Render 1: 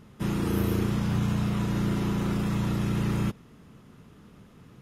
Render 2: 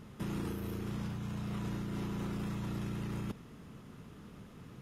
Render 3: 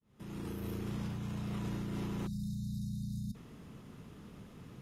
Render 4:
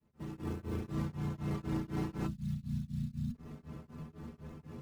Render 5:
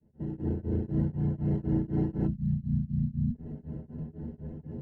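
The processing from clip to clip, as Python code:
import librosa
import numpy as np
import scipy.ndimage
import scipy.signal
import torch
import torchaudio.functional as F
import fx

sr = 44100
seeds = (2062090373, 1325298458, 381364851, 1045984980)

y1 = fx.over_compress(x, sr, threshold_db=-32.0, ratio=-1.0)
y1 = F.gain(torch.from_numpy(y1), -5.5).numpy()
y2 = fx.fade_in_head(y1, sr, length_s=0.68)
y2 = fx.spec_erase(y2, sr, start_s=2.27, length_s=1.08, low_hz=250.0, high_hz=3600.0)
y2 = fx.peak_eq(y2, sr, hz=1400.0, db=-2.5, octaves=0.77)
y3 = scipy.ndimage.median_filter(y2, 15, mode='constant')
y3 = fx.stiff_resonator(y3, sr, f0_hz=76.0, decay_s=0.22, stiffness=0.008)
y3 = y3 * np.abs(np.cos(np.pi * 4.0 * np.arange(len(y3)) / sr))
y3 = F.gain(torch.from_numpy(y3), 13.5).numpy()
y4 = scipy.signal.lfilter(np.full(37, 1.0 / 37), 1.0, y3)
y4 = F.gain(torch.from_numpy(y4), 8.5).numpy()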